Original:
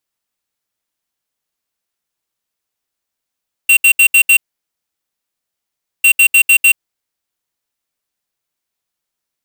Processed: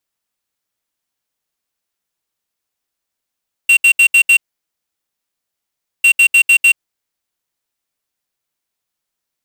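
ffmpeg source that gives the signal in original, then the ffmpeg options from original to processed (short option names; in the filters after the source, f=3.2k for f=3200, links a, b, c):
-f lavfi -i "aevalsrc='0.422*(2*lt(mod(2740*t,1),0.5)-1)*clip(min(mod(mod(t,2.35),0.15),0.08-mod(mod(t,2.35),0.15))/0.005,0,1)*lt(mod(t,2.35),0.75)':d=4.7:s=44100"
-filter_complex "[0:a]acrossover=split=8300[a][b];[b]acompressor=threshold=-28dB:ratio=4:attack=1:release=60[c];[a][c]amix=inputs=2:normalize=0"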